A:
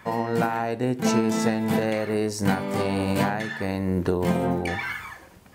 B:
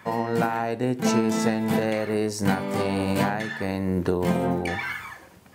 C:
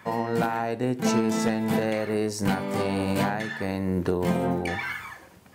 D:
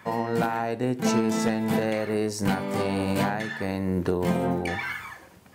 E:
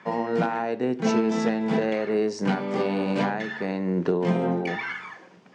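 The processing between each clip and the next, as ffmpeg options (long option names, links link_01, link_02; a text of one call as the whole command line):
ffmpeg -i in.wav -af "highpass=77" out.wav
ffmpeg -i in.wav -af "aeval=exprs='0.251*(abs(mod(val(0)/0.251+3,4)-2)-1)':channel_layout=same,acontrast=36,volume=-6.5dB" out.wav
ffmpeg -i in.wav -af anull out.wav
ffmpeg -i in.wav -af "highpass=frequency=160:width=0.5412,highpass=frequency=160:width=1.3066,equalizer=frequency=170:width_type=q:width=4:gain=4,equalizer=frequency=410:width_type=q:width=4:gain=4,equalizer=frequency=4200:width_type=q:width=4:gain=-4,lowpass=frequency=5700:width=0.5412,lowpass=frequency=5700:width=1.3066" out.wav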